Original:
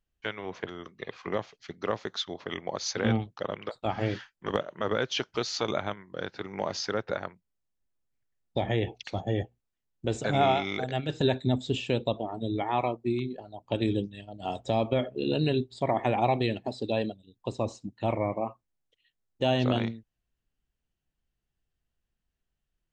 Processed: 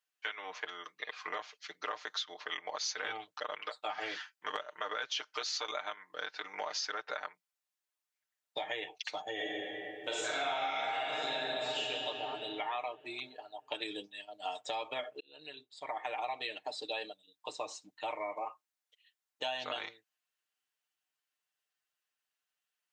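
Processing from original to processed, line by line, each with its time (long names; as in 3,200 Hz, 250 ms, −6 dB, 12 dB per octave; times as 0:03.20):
0:09.33–0:11.78: thrown reverb, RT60 2.8 s, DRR −8.5 dB
0:15.20–0:16.76: fade in
whole clip: high-pass filter 950 Hz 12 dB per octave; comb filter 6.6 ms, depth 75%; downward compressor 5 to 1, threshold −35 dBFS; level +1 dB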